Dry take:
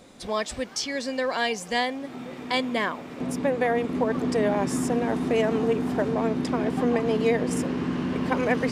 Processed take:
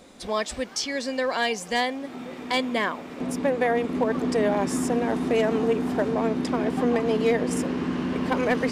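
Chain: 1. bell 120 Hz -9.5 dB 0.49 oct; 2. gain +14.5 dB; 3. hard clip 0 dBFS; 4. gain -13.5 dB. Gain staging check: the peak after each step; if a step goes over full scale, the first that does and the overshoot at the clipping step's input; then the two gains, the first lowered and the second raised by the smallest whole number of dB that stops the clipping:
-9.0, +5.5, 0.0, -13.5 dBFS; step 2, 5.5 dB; step 2 +8.5 dB, step 4 -7.5 dB

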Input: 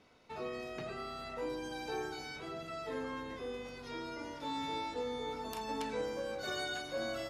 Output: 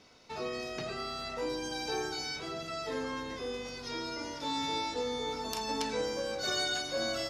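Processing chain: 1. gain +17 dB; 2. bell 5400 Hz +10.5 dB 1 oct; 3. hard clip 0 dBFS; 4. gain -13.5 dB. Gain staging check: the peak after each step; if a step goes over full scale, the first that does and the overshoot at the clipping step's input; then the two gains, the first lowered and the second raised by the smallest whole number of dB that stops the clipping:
-7.0, -3.5, -3.5, -17.0 dBFS; no overload

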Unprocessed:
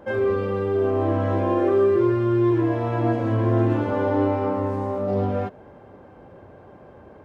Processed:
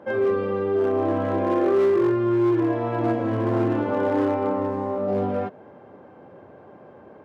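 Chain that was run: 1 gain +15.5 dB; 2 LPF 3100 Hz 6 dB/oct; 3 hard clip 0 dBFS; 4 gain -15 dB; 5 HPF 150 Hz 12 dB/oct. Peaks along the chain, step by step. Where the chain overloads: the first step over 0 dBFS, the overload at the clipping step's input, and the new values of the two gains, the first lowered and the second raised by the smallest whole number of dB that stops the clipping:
+6.5, +6.5, 0.0, -15.0, -11.5 dBFS; step 1, 6.5 dB; step 1 +8.5 dB, step 4 -8 dB

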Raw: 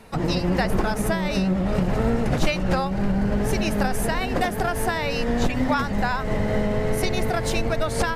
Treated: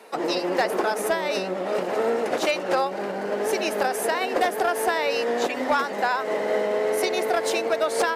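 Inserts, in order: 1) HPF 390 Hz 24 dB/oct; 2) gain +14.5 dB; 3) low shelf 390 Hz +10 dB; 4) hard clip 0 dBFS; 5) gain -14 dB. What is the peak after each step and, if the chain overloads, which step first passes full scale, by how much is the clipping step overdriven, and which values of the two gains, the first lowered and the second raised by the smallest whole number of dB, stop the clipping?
-11.0, +3.5, +5.5, 0.0, -14.0 dBFS; step 2, 5.5 dB; step 2 +8.5 dB, step 5 -8 dB

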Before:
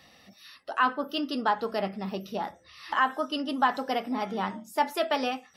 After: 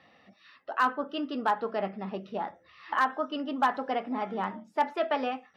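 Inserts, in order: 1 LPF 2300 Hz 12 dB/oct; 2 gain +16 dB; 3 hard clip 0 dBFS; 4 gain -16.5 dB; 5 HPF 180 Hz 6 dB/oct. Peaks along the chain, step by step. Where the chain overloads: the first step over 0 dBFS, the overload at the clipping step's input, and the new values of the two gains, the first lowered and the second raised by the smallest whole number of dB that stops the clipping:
-11.5, +4.5, 0.0, -16.5, -15.0 dBFS; step 2, 4.5 dB; step 2 +11 dB, step 4 -11.5 dB

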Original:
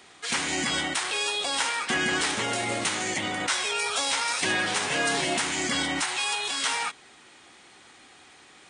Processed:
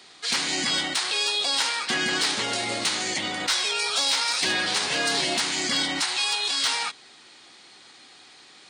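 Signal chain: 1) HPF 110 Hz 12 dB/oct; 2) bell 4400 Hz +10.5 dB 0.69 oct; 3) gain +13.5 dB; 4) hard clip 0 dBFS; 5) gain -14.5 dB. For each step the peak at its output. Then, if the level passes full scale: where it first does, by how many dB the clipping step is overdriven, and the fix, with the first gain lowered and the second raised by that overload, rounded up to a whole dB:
-11.5, -8.0, +5.5, 0.0, -14.5 dBFS; step 3, 5.5 dB; step 3 +7.5 dB, step 5 -8.5 dB

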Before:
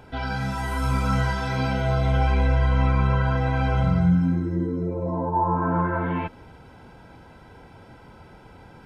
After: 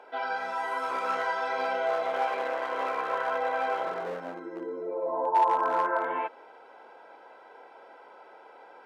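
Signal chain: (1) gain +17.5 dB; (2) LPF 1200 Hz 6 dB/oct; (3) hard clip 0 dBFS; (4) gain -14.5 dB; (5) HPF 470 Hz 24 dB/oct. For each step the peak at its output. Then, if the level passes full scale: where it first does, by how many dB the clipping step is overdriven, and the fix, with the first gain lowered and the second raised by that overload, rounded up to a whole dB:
+7.5, +7.0, 0.0, -14.5, -13.5 dBFS; step 1, 7.0 dB; step 1 +10.5 dB, step 4 -7.5 dB

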